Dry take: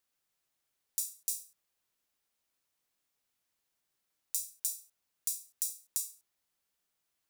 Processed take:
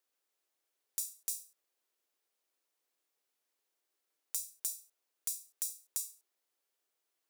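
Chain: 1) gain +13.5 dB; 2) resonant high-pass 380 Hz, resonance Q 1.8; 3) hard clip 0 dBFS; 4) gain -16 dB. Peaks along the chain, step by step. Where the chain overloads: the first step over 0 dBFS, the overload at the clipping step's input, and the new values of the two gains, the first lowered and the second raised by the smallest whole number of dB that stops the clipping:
+4.5, +4.5, 0.0, -16.0 dBFS; step 1, 4.5 dB; step 1 +8.5 dB, step 4 -11 dB

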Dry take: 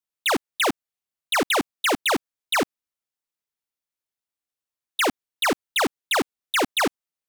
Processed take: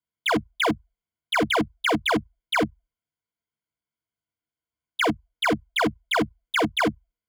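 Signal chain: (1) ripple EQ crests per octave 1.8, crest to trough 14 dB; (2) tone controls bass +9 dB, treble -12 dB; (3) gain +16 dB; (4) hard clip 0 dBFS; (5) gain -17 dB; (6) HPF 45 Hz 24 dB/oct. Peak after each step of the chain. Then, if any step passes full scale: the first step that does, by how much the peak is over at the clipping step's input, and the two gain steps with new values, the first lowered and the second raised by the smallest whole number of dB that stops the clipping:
-10.0, -9.0, +7.0, 0.0, -17.0, -14.5 dBFS; step 3, 7.0 dB; step 3 +9 dB, step 5 -10 dB

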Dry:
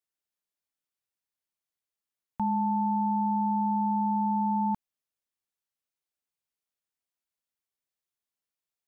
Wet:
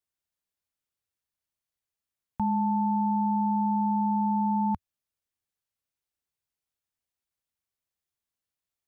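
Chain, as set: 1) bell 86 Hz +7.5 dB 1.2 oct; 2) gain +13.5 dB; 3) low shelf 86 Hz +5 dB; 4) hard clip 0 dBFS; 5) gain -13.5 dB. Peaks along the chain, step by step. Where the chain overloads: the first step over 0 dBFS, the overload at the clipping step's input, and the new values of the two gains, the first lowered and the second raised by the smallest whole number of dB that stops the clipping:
-19.5, -6.0, -4.5, -4.5, -18.0 dBFS; no overload

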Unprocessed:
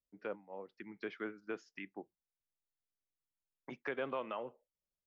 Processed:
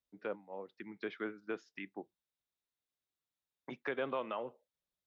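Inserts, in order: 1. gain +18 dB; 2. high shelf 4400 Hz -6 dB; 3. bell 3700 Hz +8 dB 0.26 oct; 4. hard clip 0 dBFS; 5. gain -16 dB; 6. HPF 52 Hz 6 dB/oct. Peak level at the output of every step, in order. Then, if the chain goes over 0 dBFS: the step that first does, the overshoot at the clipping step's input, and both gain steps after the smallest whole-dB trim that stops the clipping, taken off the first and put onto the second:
-5.5, -6.0, -5.5, -5.5, -21.5, -21.5 dBFS; no overload

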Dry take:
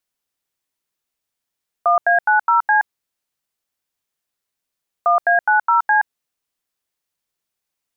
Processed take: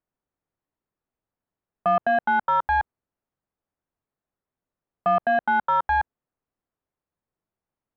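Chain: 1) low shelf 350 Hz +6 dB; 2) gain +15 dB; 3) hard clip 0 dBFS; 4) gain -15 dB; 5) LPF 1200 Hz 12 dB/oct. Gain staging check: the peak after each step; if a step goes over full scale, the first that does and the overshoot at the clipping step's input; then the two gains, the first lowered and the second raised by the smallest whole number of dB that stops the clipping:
-7.0, +8.0, 0.0, -15.0, -14.5 dBFS; step 2, 8.0 dB; step 2 +7 dB, step 4 -7 dB

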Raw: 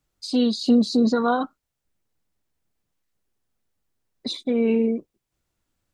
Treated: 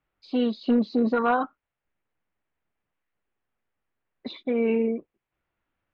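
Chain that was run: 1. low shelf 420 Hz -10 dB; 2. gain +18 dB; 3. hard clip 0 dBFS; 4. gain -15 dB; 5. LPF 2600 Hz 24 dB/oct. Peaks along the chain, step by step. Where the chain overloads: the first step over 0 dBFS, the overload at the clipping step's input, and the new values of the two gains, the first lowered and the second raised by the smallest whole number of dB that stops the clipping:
-13.0, +5.0, 0.0, -15.0, -13.5 dBFS; step 2, 5.0 dB; step 2 +13 dB, step 4 -10 dB

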